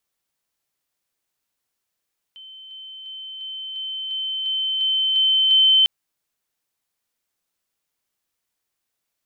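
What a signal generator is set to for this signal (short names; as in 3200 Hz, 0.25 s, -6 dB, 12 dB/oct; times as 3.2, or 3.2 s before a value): level ladder 3080 Hz -38.5 dBFS, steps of 3 dB, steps 10, 0.35 s 0.00 s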